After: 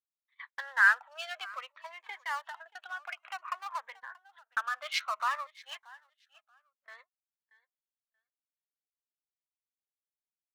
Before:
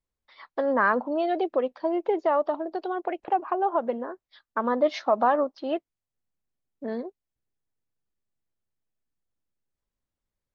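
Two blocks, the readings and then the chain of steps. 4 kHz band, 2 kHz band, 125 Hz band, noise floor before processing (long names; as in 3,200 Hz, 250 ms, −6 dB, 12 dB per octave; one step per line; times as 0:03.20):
+4.0 dB, +4.5 dB, can't be measured, below −85 dBFS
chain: adaptive Wiener filter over 9 samples
inverse Chebyshev high-pass filter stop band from 320 Hz, stop band 70 dB
noise gate −57 dBFS, range −25 dB
repeating echo 631 ms, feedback 18%, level −21.5 dB
phaser whose notches keep moving one way falling 0.57 Hz
level +8 dB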